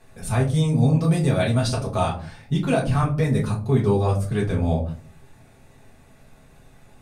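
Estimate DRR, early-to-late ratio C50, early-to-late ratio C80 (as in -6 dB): -4.5 dB, 11.5 dB, 16.5 dB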